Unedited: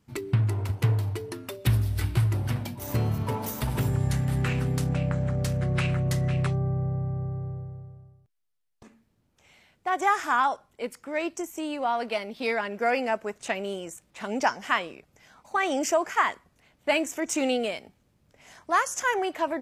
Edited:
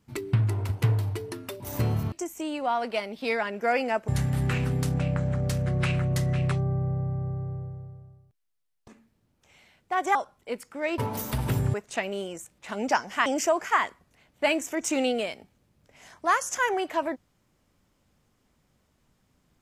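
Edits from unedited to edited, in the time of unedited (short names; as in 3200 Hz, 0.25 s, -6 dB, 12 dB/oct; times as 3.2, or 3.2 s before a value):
1.6–2.75 cut
3.27–4.03 swap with 11.3–13.26
10.1–10.47 cut
14.78–15.71 cut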